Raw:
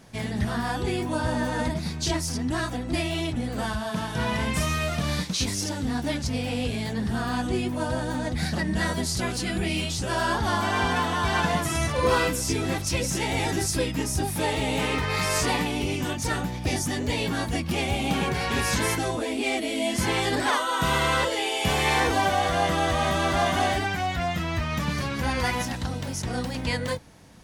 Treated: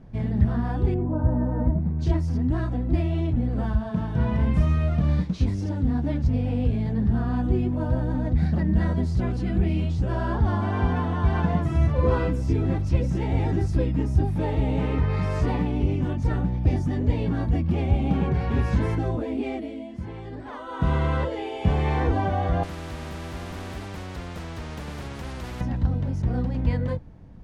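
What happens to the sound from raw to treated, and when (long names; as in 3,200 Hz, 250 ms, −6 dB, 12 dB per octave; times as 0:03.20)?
0:00.94–0:01.99: low-pass filter 1,100 Hz
0:19.44–0:20.89: duck −12 dB, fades 0.44 s
0:22.63–0:25.61: every bin compressed towards the loudest bin 10 to 1
whole clip: low-pass filter 3,200 Hz 6 dB per octave; spectral tilt −4 dB per octave; level −5.5 dB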